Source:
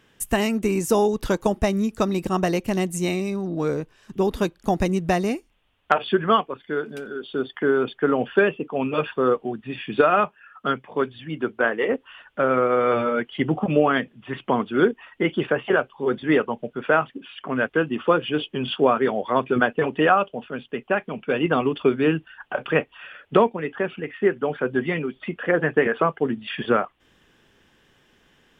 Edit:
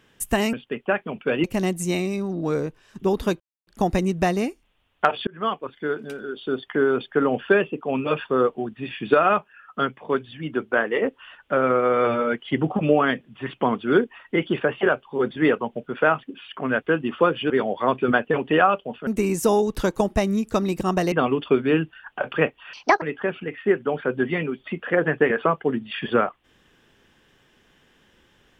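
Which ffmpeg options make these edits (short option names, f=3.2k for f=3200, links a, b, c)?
-filter_complex "[0:a]asplit=10[a][b][c][d][e][f][g][h][i][j];[a]atrim=end=0.532[k];[b]atrim=start=20.548:end=21.462[l];[c]atrim=start=2.578:end=4.54,asetpts=PTS-STARTPTS,afade=t=out:st=1.958:d=0.004:c=hsin,apad=pad_dur=0.27[m];[d]atrim=start=4.54:end=6.14,asetpts=PTS-STARTPTS,afade=t=in:d=0.004:c=hsin,afade=t=out:st=1.596:d=0.004:c=hsin[n];[e]atrim=start=6.14:end=18.372,asetpts=PTS-STARTPTS,afade=t=in:d=0.42[o];[f]atrim=start=18.978:end=20.552[p];[g]atrim=start=0.528:end=2.582[q];[h]atrim=start=21.458:end=23.074[r];[i]atrim=start=23.07:end=23.58,asetpts=PTS-STARTPTS,asetrate=77616,aresample=44100[s];[j]atrim=start=23.576[t];[k][l]acrossfade=d=0.004:c1=hsin:c2=hsin[u];[m][n][o]concat=n=3:v=0:a=1[v];[u][v]acrossfade=d=0.004:c1=hsin:c2=hsin[w];[w][p]acrossfade=d=0.004:c1=hsin:c2=hsin[x];[x][q]acrossfade=d=0.004:c1=hsin:c2=hsin[y];[y][r]acrossfade=d=0.004:c1=hsin:c2=hsin[z];[z][s]acrossfade=d=0.004:c1=hsin:c2=hsin[aa];[aa][t]acrossfade=d=0.004:c1=hsin:c2=hsin"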